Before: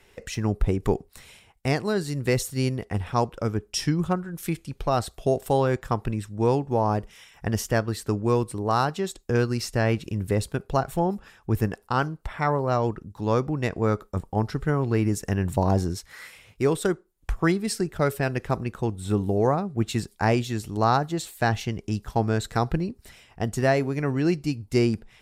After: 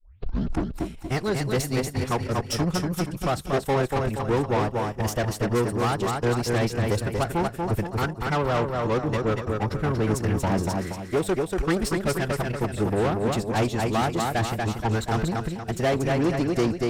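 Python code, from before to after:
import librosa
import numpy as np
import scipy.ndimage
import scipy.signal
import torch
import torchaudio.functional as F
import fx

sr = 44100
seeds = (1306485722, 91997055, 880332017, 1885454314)

y = fx.tape_start_head(x, sr, length_s=1.12)
y = fx.echo_feedback(y, sr, ms=353, feedback_pct=46, wet_db=-4.5)
y = fx.tube_stage(y, sr, drive_db=26.0, bias=0.6)
y = fx.stretch_vocoder(y, sr, factor=0.67)
y = fx.upward_expand(y, sr, threshold_db=-40.0, expansion=1.5)
y = y * 10.0 ** (8.0 / 20.0)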